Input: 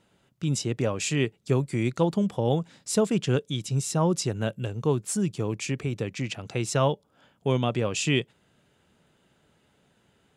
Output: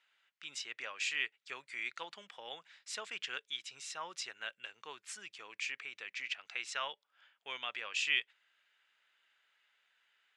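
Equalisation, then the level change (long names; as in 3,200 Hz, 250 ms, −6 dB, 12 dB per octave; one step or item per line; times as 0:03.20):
four-pole ladder band-pass 2,400 Hz, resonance 30%
+8.0 dB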